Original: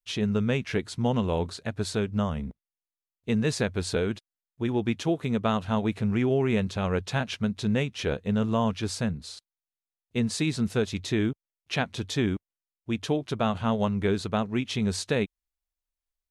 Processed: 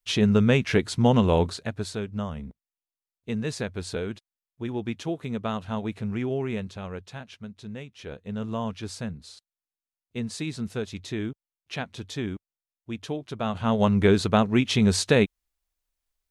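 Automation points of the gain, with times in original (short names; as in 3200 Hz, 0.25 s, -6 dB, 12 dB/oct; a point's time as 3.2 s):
1.4 s +6 dB
1.95 s -4 dB
6.4 s -4 dB
7.24 s -12.5 dB
7.95 s -12.5 dB
8.49 s -5 dB
13.33 s -5 dB
13.93 s +6.5 dB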